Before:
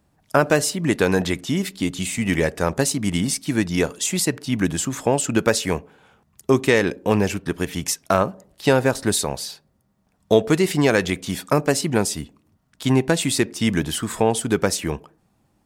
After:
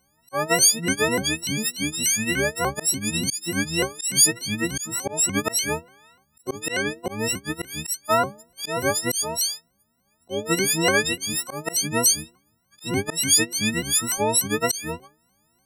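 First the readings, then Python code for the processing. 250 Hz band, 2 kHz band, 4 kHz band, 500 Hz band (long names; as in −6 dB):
−7.0 dB, 0.0 dB, +3.0 dB, −7.0 dB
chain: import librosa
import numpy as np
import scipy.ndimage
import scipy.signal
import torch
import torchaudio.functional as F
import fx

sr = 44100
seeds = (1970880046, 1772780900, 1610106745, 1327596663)

y = fx.freq_snap(x, sr, grid_st=6)
y = fx.auto_swell(y, sr, attack_ms=183.0)
y = fx.vibrato_shape(y, sr, shape='saw_up', rate_hz=3.4, depth_cents=250.0)
y = F.gain(torch.from_numpy(y), -6.0).numpy()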